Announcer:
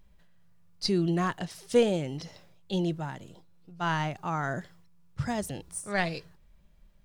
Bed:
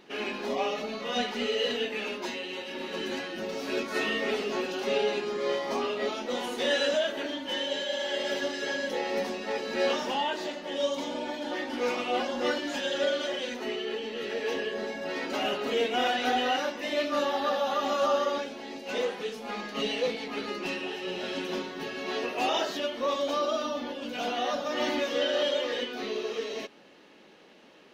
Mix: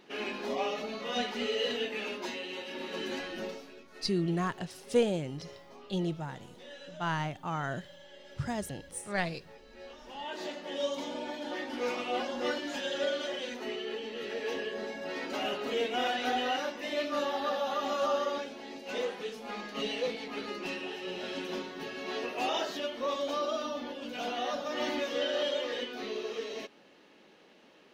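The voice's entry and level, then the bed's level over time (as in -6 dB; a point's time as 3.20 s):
3.20 s, -3.5 dB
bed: 3.47 s -3 dB
3.75 s -22 dB
9.96 s -22 dB
10.42 s -4 dB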